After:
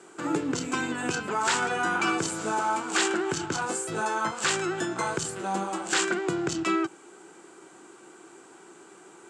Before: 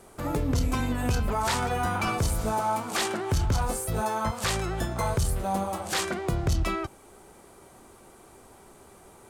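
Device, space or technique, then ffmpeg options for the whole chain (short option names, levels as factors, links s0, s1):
television speaker: -af "highpass=f=170:w=0.5412,highpass=f=170:w=1.3066,equalizer=f=230:t=q:w=4:g=-7,equalizer=f=330:t=q:w=4:g=10,equalizer=f=600:t=q:w=4:g=-7,equalizer=f=1500:t=q:w=4:g=8,equalizer=f=2800:t=q:w=4:g=5,equalizer=f=7500:t=q:w=4:g=10,lowpass=f=8100:w=0.5412,lowpass=f=8100:w=1.3066"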